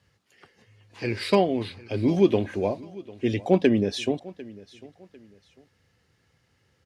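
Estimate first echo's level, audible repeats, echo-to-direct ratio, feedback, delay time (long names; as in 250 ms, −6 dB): −20.5 dB, 2, −20.0 dB, 31%, 748 ms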